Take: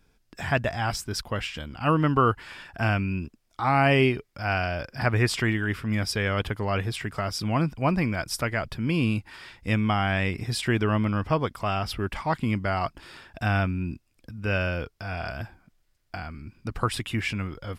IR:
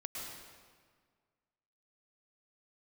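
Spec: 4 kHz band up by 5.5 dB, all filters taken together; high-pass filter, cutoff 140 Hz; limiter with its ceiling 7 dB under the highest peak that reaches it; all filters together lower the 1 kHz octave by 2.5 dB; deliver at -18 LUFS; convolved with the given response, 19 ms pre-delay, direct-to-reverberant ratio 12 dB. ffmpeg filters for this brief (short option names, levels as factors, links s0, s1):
-filter_complex "[0:a]highpass=140,equalizer=f=1000:t=o:g=-4,equalizer=f=4000:t=o:g=8,alimiter=limit=0.211:level=0:latency=1,asplit=2[s0][s1];[1:a]atrim=start_sample=2205,adelay=19[s2];[s1][s2]afir=irnorm=-1:irlink=0,volume=0.251[s3];[s0][s3]amix=inputs=2:normalize=0,volume=3.16"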